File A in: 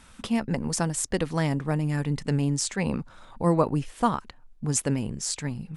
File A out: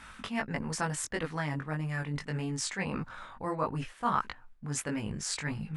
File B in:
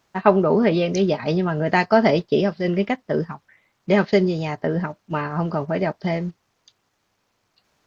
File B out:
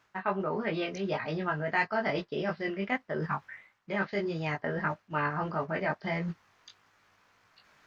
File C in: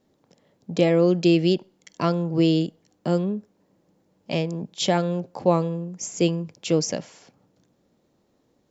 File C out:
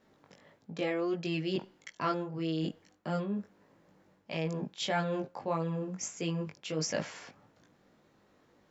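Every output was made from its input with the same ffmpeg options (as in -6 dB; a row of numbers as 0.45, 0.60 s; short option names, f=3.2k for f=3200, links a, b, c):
-af "flanger=delay=18.5:depth=2.2:speed=1.6,equalizer=f=83:t=o:w=2.9:g=2.5,areverse,acompressor=threshold=-33dB:ratio=6,areverse,equalizer=f=1.6k:t=o:w=2.1:g=12"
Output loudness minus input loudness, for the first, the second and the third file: -7.0, -11.5, -11.5 LU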